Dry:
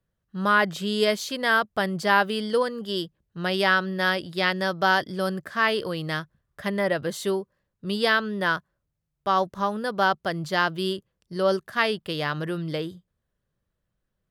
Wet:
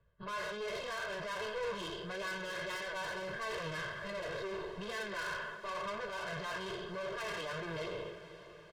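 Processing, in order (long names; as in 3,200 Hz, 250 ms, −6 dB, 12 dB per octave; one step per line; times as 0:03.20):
peak hold with a decay on every bin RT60 1.13 s
high-frequency loss of the air 320 metres
time stretch by phase vocoder 0.61×
reversed playback
downward compressor 12 to 1, threshold −31 dBFS, peak gain reduction 13 dB
reversed playback
tube saturation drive 42 dB, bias 0.65
low-shelf EQ 360 Hz −5 dB
notch filter 520 Hz, Q 12
brickwall limiter −48.5 dBFS, peak gain reduction 11 dB
comb filter 1.9 ms, depth 92%
feedback delay with all-pass diffusion 507 ms, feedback 58%, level −14 dB
level +11.5 dB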